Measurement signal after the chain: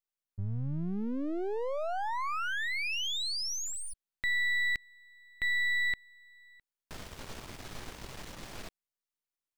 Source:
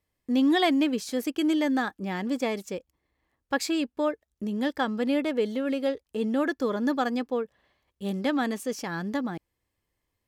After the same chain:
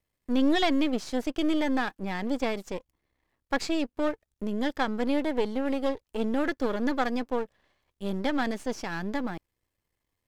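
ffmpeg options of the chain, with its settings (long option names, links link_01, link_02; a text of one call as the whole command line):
ffmpeg -i in.wav -filter_complex "[0:a]aeval=exprs='if(lt(val(0),0),0.251*val(0),val(0))':channel_layout=same,acrossover=split=7600[link_01][link_02];[link_02]acompressor=threshold=-59dB:ratio=4:attack=1:release=60[link_03];[link_01][link_03]amix=inputs=2:normalize=0,volume=2dB" out.wav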